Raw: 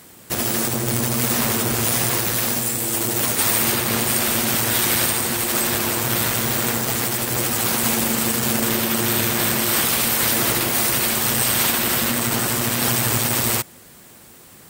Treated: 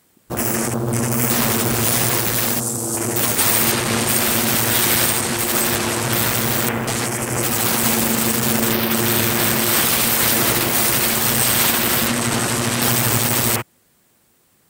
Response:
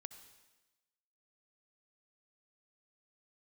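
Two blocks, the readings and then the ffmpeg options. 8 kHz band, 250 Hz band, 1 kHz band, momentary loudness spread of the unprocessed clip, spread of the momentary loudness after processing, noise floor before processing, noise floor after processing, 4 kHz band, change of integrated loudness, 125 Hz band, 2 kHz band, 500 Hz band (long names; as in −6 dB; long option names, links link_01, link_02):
+2.0 dB, +3.0 dB, +3.0 dB, 3 LU, 6 LU, −46 dBFS, −59 dBFS, +2.0 dB, +2.0 dB, +3.0 dB, +2.5 dB, +3.0 dB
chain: -af "afwtdn=0.0316,volume=3dB"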